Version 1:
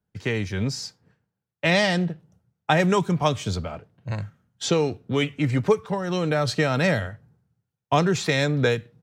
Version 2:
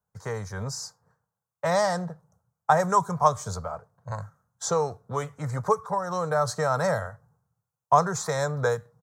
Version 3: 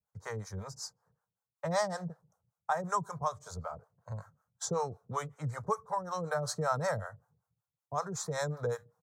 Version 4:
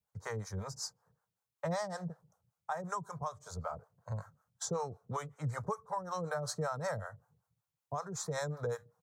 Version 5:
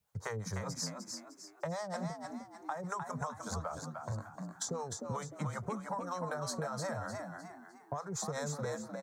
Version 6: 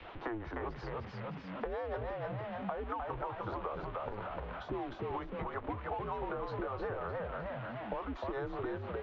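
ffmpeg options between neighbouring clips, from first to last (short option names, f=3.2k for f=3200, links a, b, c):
-af "firequalizer=gain_entry='entry(150,0);entry(300,-14);entry(470,4);entry(1100,13);entry(2700,-21);entry(3900,-5);entry(6400,8)':delay=0.05:min_phase=1,volume=-6dB"
-filter_complex "[0:a]alimiter=limit=-12.5dB:level=0:latency=1:release=464,acrossover=split=490[a][b];[a]aeval=exprs='val(0)*(1-1/2+1/2*cos(2*PI*5.3*n/s))':c=same[c];[b]aeval=exprs='val(0)*(1-1/2-1/2*cos(2*PI*5.3*n/s))':c=same[d];[c][d]amix=inputs=2:normalize=0,volume=-2.5dB"
-af "alimiter=level_in=4dB:limit=-24dB:level=0:latency=1:release=436,volume=-4dB,volume=1.5dB"
-filter_complex "[0:a]acompressor=threshold=-43dB:ratio=6,asplit=2[a][b];[b]asplit=5[c][d][e][f][g];[c]adelay=304,afreqshift=70,volume=-5dB[h];[d]adelay=608,afreqshift=140,volume=-13.4dB[i];[e]adelay=912,afreqshift=210,volume=-21.8dB[j];[f]adelay=1216,afreqshift=280,volume=-30.2dB[k];[g]adelay=1520,afreqshift=350,volume=-38.6dB[l];[h][i][j][k][l]amix=inputs=5:normalize=0[m];[a][m]amix=inputs=2:normalize=0,volume=7dB"
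-filter_complex "[0:a]aeval=exprs='val(0)+0.5*0.00841*sgn(val(0))':c=same,highpass=f=160:t=q:w=0.5412,highpass=f=160:t=q:w=1.307,lowpass=f=3.3k:t=q:w=0.5176,lowpass=f=3.3k:t=q:w=0.7071,lowpass=f=3.3k:t=q:w=1.932,afreqshift=-120,acrossover=split=170|1600[a][b][c];[a]acompressor=threshold=-50dB:ratio=4[d];[b]acompressor=threshold=-41dB:ratio=4[e];[c]acompressor=threshold=-59dB:ratio=4[f];[d][e][f]amix=inputs=3:normalize=0,volume=4.5dB"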